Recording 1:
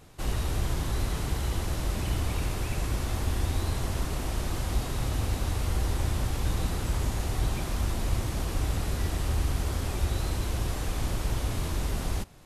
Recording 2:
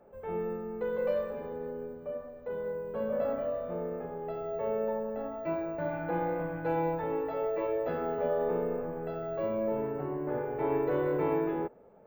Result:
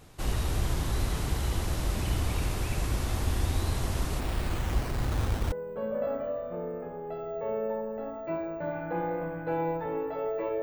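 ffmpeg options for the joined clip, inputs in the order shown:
-filter_complex "[0:a]asplit=3[a][b][c];[a]afade=t=out:st=4.19:d=0.02[d];[b]acrusher=samples=13:mix=1:aa=0.000001:lfo=1:lforange=13:lforate=0.41,afade=t=in:st=4.19:d=0.02,afade=t=out:st=5.52:d=0.02[e];[c]afade=t=in:st=5.52:d=0.02[f];[d][e][f]amix=inputs=3:normalize=0,apad=whole_dur=10.62,atrim=end=10.62,atrim=end=5.522[g];[1:a]atrim=start=2.698:end=7.8[h];[g][h]acrossfade=d=0.004:c1=hsin:c2=hsin"

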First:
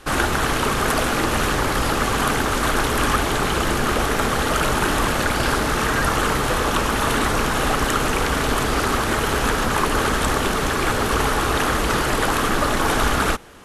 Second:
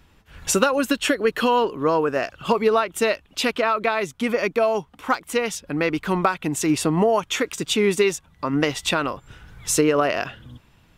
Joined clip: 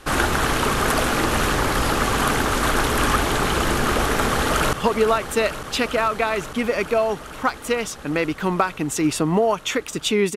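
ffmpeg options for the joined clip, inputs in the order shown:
-filter_complex "[0:a]apad=whole_dur=10.36,atrim=end=10.36,atrim=end=4.732[a];[1:a]atrim=start=2.378:end=8.01[b];[a][b]acrossfade=d=0.004:c1=hsin:c2=hsin,asplit=2[c][d];[d]afade=t=in:st=4.28:d=0.01,afade=t=out:st=4.73:d=0.01,aecho=0:1:450|900|1350|1800|2250|2700|3150|3600|4050|4500|4950|5400:0.316228|0.268794|0.228475|0.194203|0.165073|0.140312|0.119265|0.101375|0.0861691|0.0732437|0.0622572|0.0529186[e];[c][e]amix=inputs=2:normalize=0"

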